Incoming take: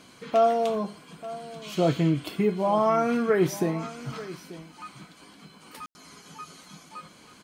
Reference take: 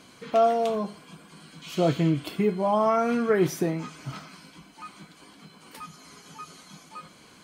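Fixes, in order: room tone fill 5.86–5.95 s; inverse comb 887 ms -16.5 dB

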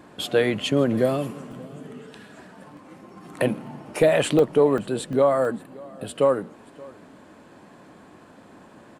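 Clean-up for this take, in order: interpolate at 1.52/2.77/3.67/4.39/4.78/5.13/5.45 s, 1.6 ms; inverse comb 577 ms -23 dB

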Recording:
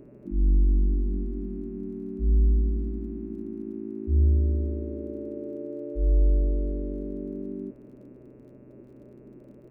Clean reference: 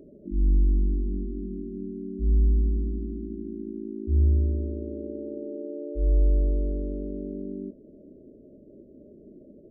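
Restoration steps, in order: de-click; de-hum 126.1 Hz, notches 22; inverse comb 358 ms -20 dB

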